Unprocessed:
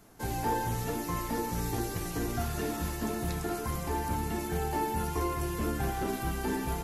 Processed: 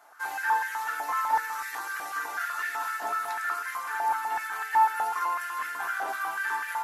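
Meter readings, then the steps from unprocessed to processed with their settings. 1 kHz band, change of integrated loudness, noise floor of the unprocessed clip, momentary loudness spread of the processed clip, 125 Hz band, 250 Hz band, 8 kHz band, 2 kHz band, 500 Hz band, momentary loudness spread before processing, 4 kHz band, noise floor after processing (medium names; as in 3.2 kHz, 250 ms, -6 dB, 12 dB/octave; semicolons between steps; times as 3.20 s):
+8.0 dB, +3.5 dB, -37 dBFS, 7 LU, under -35 dB, under -20 dB, -3.0 dB, +12.0 dB, -10.0 dB, 2 LU, -1.5 dB, -37 dBFS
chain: peaking EQ 1.5 kHz +10 dB 0.85 oct; FDN reverb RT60 0.34 s, high-frequency decay 0.7×, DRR 5.5 dB; step-sequenced high-pass 8 Hz 760–1800 Hz; trim -4 dB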